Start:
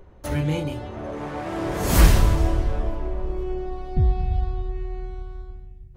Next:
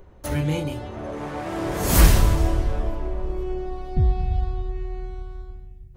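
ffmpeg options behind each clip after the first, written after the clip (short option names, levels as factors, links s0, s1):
-af "highshelf=f=6800:g=5.5"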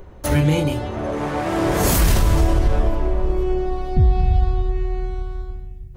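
-af "alimiter=level_in=5.01:limit=0.891:release=50:level=0:latency=1,volume=0.473"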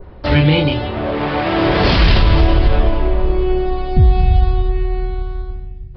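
-af "aresample=11025,aresample=44100,adynamicequalizer=threshold=0.00631:dfrequency=3100:dqfactor=1:tfrequency=3100:tqfactor=1:attack=5:release=100:ratio=0.375:range=3.5:mode=boostabove:tftype=bell,volume=1.68"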